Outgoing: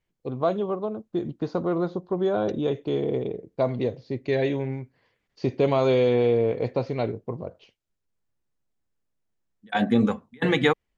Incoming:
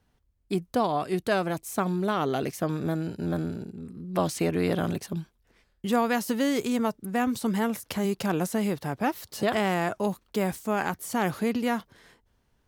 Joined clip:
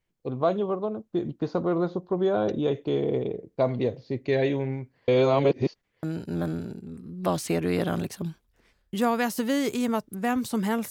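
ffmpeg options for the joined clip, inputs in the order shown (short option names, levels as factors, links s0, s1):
-filter_complex "[0:a]apad=whole_dur=10.9,atrim=end=10.9,asplit=2[s0][s1];[s0]atrim=end=5.082[s2];[s1]atrim=start=5.078:end=6.032,asetpts=PTS-STARTPTS,areverse[s3];[1:a]atrim=start=2.938:end=7.81[s4];[s2][s3]acrossfade=d=0.004:c1=hsin:c2=hsin[s5];[s5][s4]acrossfade=d=0.004:c1=hsin:c2=hsin"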